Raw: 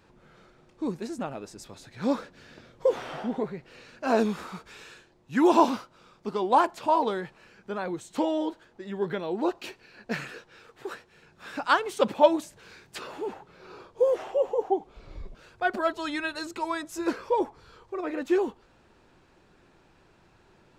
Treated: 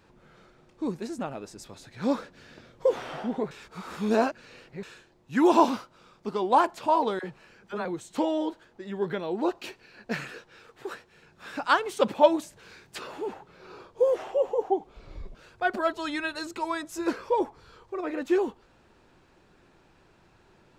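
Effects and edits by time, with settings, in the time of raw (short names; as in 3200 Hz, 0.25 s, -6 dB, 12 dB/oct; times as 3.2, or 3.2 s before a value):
3.51–4.83 reverse
7.19–7.85 dispersion lows, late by 50 ms, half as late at 680 Hz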